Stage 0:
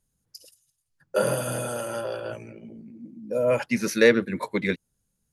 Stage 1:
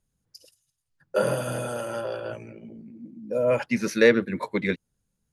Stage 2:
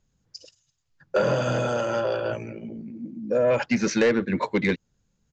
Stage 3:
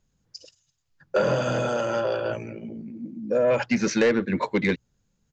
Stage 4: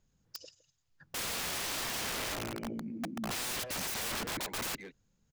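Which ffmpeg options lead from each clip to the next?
ffmpeg -i in.wav -af "highshelf=frequency=7400:gain=-9.5" out.wav
ffmpeg -i in.wav -af "acompressor=threshold=-24dB:ratio=2,aresample=16000,asoftclip=type=tanh:threshold=-20dB,aresample=44100,volume=6.5dB" out.wav
ffmpeg -i in.wav -af "bandreject=frequency=60:width_type=h:width=6,bandreject=frequency=120:width_type=h:width=6" out.wav
ffmpeg -i in.wav -filter_complex "[0:a]asplit=2[link_01][link_02];[link_02]adelay=160,highpass=300,lowpass=3400,asoftclip=type=hard:threshold=-22dB,volume=-18dB[link_03];[link_01][link_03]amix=inputs=2:normalize=0,aeval=exprs='(mod(28.2*val(0)+1,2)-1)/28.2':channel_layout=same,volume=-2.5dB" out.wav

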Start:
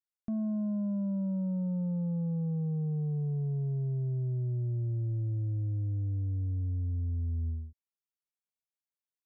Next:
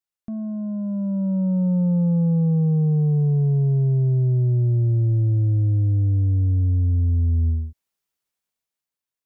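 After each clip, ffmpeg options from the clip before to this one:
ffmpeg -i in.wav -af "dynaudnorm=framelen=280:gausssize=9:maxgain=10dB,volume=3dB" out.wav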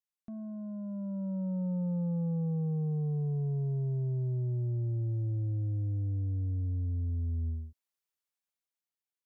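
ffmpeg -i in.wav -af "lowshelf=frequency=410:gain=-5.5,volume=-8dB" out.wav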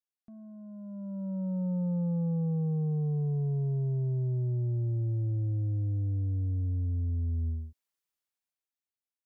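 ffmpeg -i in.wav -af "dynaudnorm=framelen=130:gausssize=17:maxgain=9.5dB,volume=-7.5dB" out.wav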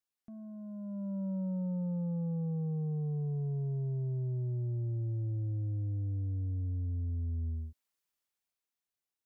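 ffmpeg -i in.wav -af "acompressor=threshold=-35dB:ratio=6,volume=1.5dB" out.wav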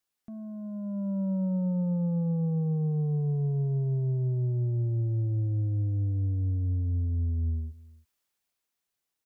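ffmpeg -i in.wav -af "aecho=1:1:323:0.0841,volume=6.5dB" out.wav

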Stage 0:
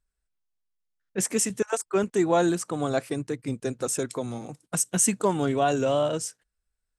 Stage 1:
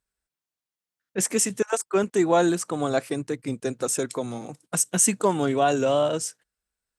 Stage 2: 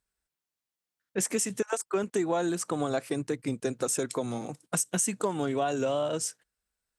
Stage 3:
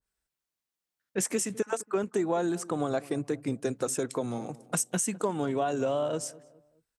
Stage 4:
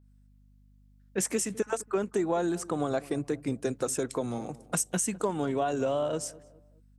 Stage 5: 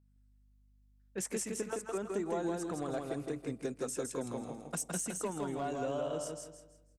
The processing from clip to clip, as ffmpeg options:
ffmpeg -i in.wav -af "highpass=frequency=150:poles=1,volume=2.5dB" out.wav
ffmpeg -i in.wav -af "acompressor=threshold=-25dB:ratio=6" out.wav
ffmpeg -i in.wav -filter_complex "[0:a]asplit=2[link_01][link_02];[link_02]adelay=207,lowpass=frequency=950:poles=1,volume=-18.5dB,asplit=2[link_03][link_04];[link_04]adelay=207,lowpass=frequency=950:poles=1,volume=0.43,asplit=2[link_05][link_06];[link_06]adelay=207,lowpass=frequency=950:poles=1,volume=0.43[link_07];[link_01][link_03][link_05][link_07]amix=inputs=4:normalize=0,adynamicequalizer=threshold=0.00501:dfrequency=1700:dqfactor=0.7:tfrequency=1700:tqfactor=0.7:attack=5:release=100:ratio=0.375:range=2.5:mode=cutabove:tftype=highshelf" out.wav
ffmpeg -i in.wav -af "aeval=exprs='val(0)+0.00126*(sin(2*PI*50*n/s)+sin(2*PI*2*50*n/s)/2+sin(2*PI*3*50*n/s)/3+sin(2*PI*4*50*n/s)/4+sin(2*PI*5*50*n/s)/5)':channel_layout=same" out.wav
ffmpeg -i in.wav -filter_complex "[0:a]asoftclip=type=hard:threshold=-20dB,asplit=2[link_01][link_02];[link_02]aecho=0:1:163|326|489|652:0.668|0.214|0.0684|0.0219[link_03];[link_01][link_03]amix=inputs=2:normalize=0,volume=-8.5dB" out.wav

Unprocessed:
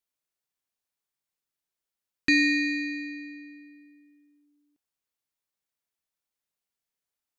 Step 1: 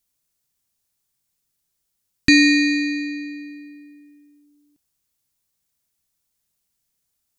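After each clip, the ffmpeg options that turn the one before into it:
ffmpeg -i in.wav -af "bass=frequency=250:gain=12,treble=frequency=4000:gain=9,volume=5.5dB" out.wav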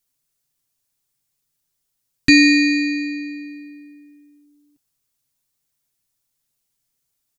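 ffmpeg -i in.wav -af "aecho=1:1:7.4:0.59,volume=-1dB" out.wav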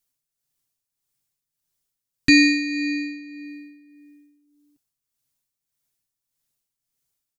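ffmpeg -i in.wav -af "tremolo=f=1.7:d=0.6,volume=-2.5dB" out.wav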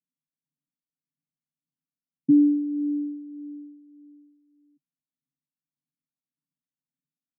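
ffmpeg -i in.wav -af "asuperpass=centerf=210:order=12:qfactor=1.2" out.wav

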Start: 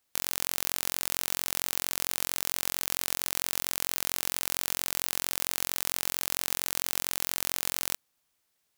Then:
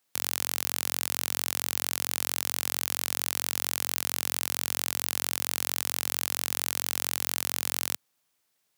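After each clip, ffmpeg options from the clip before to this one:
ffmpeg -i in.wav -af "highpass=frequency=94:width=0.5412,highpass=frequency=94:width=1.3066,volume=1dB" out.wav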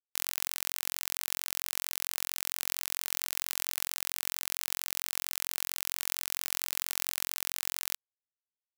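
ffmpeg -i in.wav -af "afreqshift=95,acrusher=bits=3:mix=0:aa=0.5,volume=-4dB" out.wav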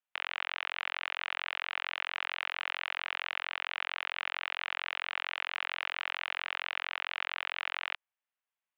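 ffmpeg -i in.wav -af "highpass=frequency=570:width_type=q:width=0.5412,highpass=frequency=570:width_type=q:width=1.307,lowpass=frequency=3000:width_type=q:width=0.5176,lowpass=frequency=3000:width_type=q:width=0.7071,lowpass=frequency=3000:width_type=q:width=1.932,afreqshift=63,volume=8dB" out.wav

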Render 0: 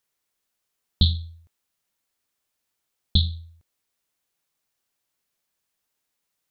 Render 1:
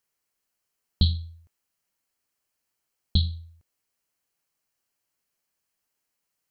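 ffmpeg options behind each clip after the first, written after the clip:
ffmpeg -i in.wav -af "bandreject=frequency=3600:width=6.3,volume=-1.5dB" out.wav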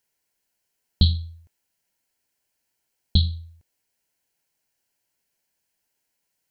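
ffmpeg -i in.wav -af "asuperstop=centerf=1200:order=4:qfactor=4.4,volume=3.5dB" out.wav

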